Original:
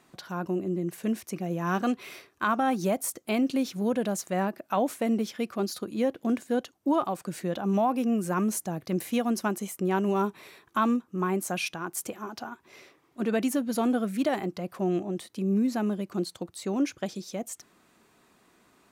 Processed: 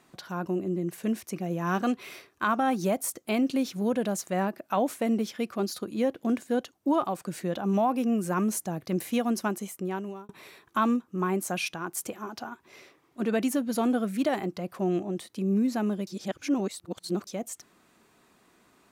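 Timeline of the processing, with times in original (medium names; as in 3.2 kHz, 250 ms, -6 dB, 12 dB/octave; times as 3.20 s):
9.20–10.29 s: fade out equal-power
16.07–17.27 s: reverse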